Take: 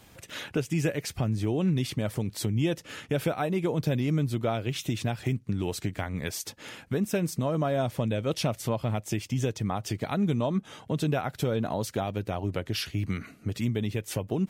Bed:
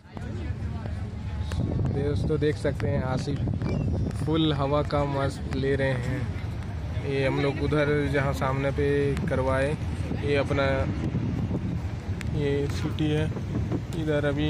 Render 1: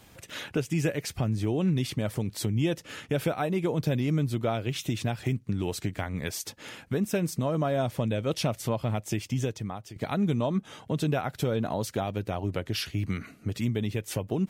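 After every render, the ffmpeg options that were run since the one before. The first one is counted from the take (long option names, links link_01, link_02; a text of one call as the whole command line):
ffmpeg -i in.wav -filter_complex "[0:a]asplit=2[link_01][link_02];[link_01]atrim=end=9.96,asetpts=PTS-STARTPTS,afade=type=out:start_time=9.34:duration=0.62:silence=0.16788[link_03];[link_02]atrim=start=9.96,asetpts=PTS-STARTPTS,afade=type=in:duration=0.004:curve=hsin:silence=0.16788[link_04];[link_03][link_04]concat=n=2:v=0:a=1" out.wav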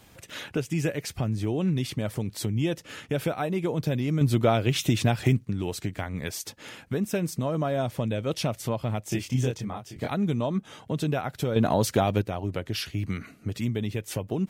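ffmpeg -i in.wav -filter_complex "[0:a]asettb=1/sr,asplit=3[link_01][link_02][link_03];[link_01]atrim=end=9.094[link_04];[link_02]atrim=start=9.09:end=10.1,asetpts=PTS-STARTPTS,afade=type=in:duration=0.004:curve=qsin,afade=type=out:start_time=1.006:duration=0.004:curve=qsin,asplit=2[link_05][link_06];[link_06]adelay=24,volume=-2dB[link_07];[link_05][link_07]amix=inputs=2:normalize=0,atrim=end_sample=44541[link_08];[link_03]atrim=start=10.096[link_09];[link_04][link_08]acrossfade=duration=0.004:curve1=hsin:curve2=qsin[link_10];[link_10][link_09]acrossfade=duration=0.004:curve1=qsin:curve2=hsin,asettb=1/sr,asplit=3[link_11][link_12][link_13];[link_11]atrim=end=11.564[link_14];[link_12]atrim=start=11.56:end=12.22,asetpts=PTS-STARTPTS,afade=type=in:duration=0.004:curve=qsin,afade=type=out:start_time=0.656:duration=0.004:curve=qsin,acontrast=89[link_15];[link_13]atrim=start=12.216[link_16];[link_14][link_15]acrossfade=duration=0.004:curve1=hsin:curve2=qsin[link_17];[link_17][link_16]acrossfade=duration=0.004:curve1=qsin:curve2=hsin,asplit=3[link_18][link_19][link_20];[link_18]atrim=end=4.212[link_21];[link_19]atrim=start=4.208:end=5.452,asetpts=PTS-STARTPTS,volume=6.5dB[link_22];[link_20]atrim=start=5.448[link_23];[link_21][link_22]acrossfade=duration=0.004:curve1=hsin:curve2=hsin[link_24];[link_24][link_23]acrossfade=duration=0.004:curve1=hsin:curve2=hsin" out.wav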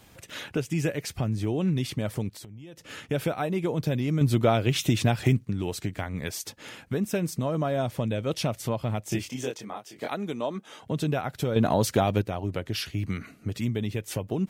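ffmpeg -i in.wav -filter_complex "[0:a]asplit=3[link_01][link_02][link_03];[link_01]afade=type=out:start_time=2.28:duration=0.02[link_04];[link_02]acompressor=threshold=-40dB:ratio=20:attack=3.2:release=140:knee=1:detection=peak,afade=type=in:start_time=2.28:duration=0.02,afade=type=out:start_time=2.89:duration=0.02[link_05];[link_03]afade=type=in:start_time=2.89:duration=0.02[link_06];[link_04][link_05][link_06]amix=inputs=3:normalize=0,asettb=1/sr,asplit=3[link_07][link_08][link_09];[link_07]atrim=end=9.294[link_10];[link_08]atrim=start=9.29:end=10.83,asetpts=PTS-STARTPTS,afade=type=in:duration=0.004:curve=qsin,afade=type=out:start_time=1.536:duration=0.004:curve=qsin,highpass=310[link_11];[link_09]atrim=start=10.826[link_12];[link_10][link_11]acrossfade=duration=0.004:curve1=hsin:curve2=qsin[link_13];[link_13][link_12]acrossfade=duration=0.004:curve1=qsin:curve2=hsin" out.wav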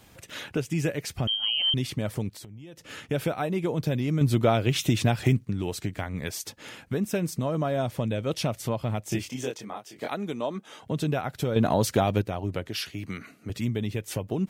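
ffmpeg -i in.wav -filter_complex "[0:a]asettb=1/sr,asplit=3[link_01][link_02][link_03];[link_01]atrim=end=1.274[link_04];[link_02]atrim=start=1.27:end=1.74,asetpts=PTS-STARTPTS,afade=type=in:duration=0.004:curve=qsin,afade=type=out:start_time=0.466:duration=0.004:curve=qsin,lowpass=frequency=2800:width_type=q:width=0.5098,lowpass=frequency=2800:width_type=q:width=0.6013,lowpass=frequency=2800:width_type=q:width=0.9,lowpass=frequency=2800:width_type=q:width=2.563,afreqshift=-3300[link_05];[link_03]atrim=start=1.736[link_06];[link_04][link_05]acrossfade=duration=0.004:curve1=hsin:curve2=qsin[link_07];[link_07][link_06]acrossfade=duration=0.004:curve1=qsin:curve2=hsin,asettb=1/sr,asplit=3[link_08][link_09][link_10];[link_08]atrim=end=12.684[link_11];[link_09]atrim=start=12.68:end=13.5,asetpts=PTS-STARTPTS,afade=type=in:duration=0.004:curve=qsin,afade=type=out:start_time=0.816:duration=0.004:curve=qsin,highpass=frequency=250:poles=1[link_12];[link_10]atrim=start=13.496[link_13];[link_11][link_12]acrossfade=duration=0.004:curve1=hsin:curve2=qsin[link_14];[link_14][link_13]acrossfade=duration=0.004:curve1=qsin:curve2=hsin" out.wav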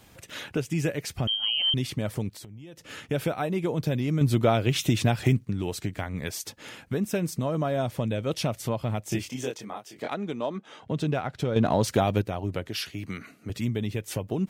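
ffmpeg -i in.wav -filter_complex "[0:a]asettb=1/sr,asplit=3[link_01][link_02][link_03];[link_01]atrim=end=10.024[link_04];[link_02]atrim=start=10.02:end=11.88,asetpts=PTS-STARTPTS,afade=type=in:duration=0.004:curve=qsin,afade=type=out:start_time=1.856:duration=0.004:curve=qsin,adynamicsmooth=sensitivity=6.5:basefreq=5800[link_05];[link_03]atrim=start=11.876[link_06];[link_04][link_05]acrossfade=duration=0.004:curve1=hsin:curve2=qsin[link_07];[link_07][link_06]acrossfade=duration=0.004:curve1=qsin:curve2=hsin" out.wav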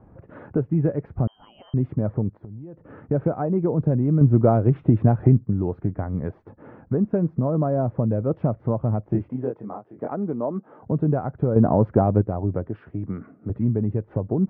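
ffmpeg -i in.wav -af "lowpass=frequency=1400:width=0.5412,lowpass=frequency=1400:width=1.3066,tiltshelf=frequency=1100:gain=7" out.wav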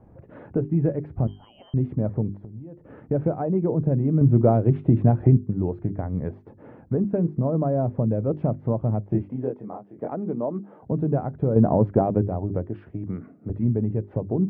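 ffmpeg -i in.wav -af "equalizer=frequency=1300:width_type=o:width=0.9:gain=-6,bandreject=frequency=50:width_type=h:width=6,bandreject=frequency=100:width_type=h:width=6,bandreject=frequency=150:width_type=h:width=6,bandreject=frequency=200:width_type=h:width=6,bandreject=frequency=250:width_type=h:width=6,bandreject=frequency=300:width_type=h:width=6,bandreject=frequency=350:width_type=h:width=6,bandreject=frequency=400:width_type=h:width=6" out.wav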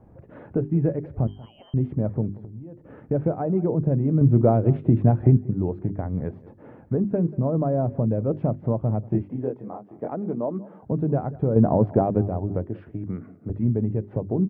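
ffmpeg -i in.wav -filter_complex "[0:a]asplit=2[link_01][link_02];[link_02]adelay=186.6,volume=-20dB,highshelf=frequency=4000:gain=-4.2[link_03];[link_01][link_03]amix=inputs=2:normalize=0" out.wav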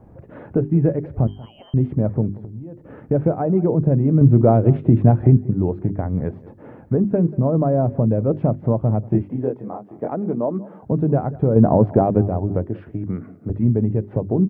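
ffmpeg -i in.wav -af "volume=5dB,alimiter=limit=-3dB:level=0:latency=1" out.wav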